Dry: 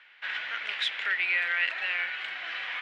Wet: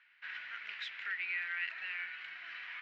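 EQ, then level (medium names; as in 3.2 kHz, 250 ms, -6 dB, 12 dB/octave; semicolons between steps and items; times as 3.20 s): distance through air 65 m; cabinet simulation 120–7200 Hz, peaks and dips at 280 Hz -8 dB, 460 Hz -4 dB, 790 Hz -8 dB, 1.1 kHz -3 dB, 3.4 kHz -7 dB; peaking EQ 540 Hz -11 dB 0.67 oct; -8.5 dB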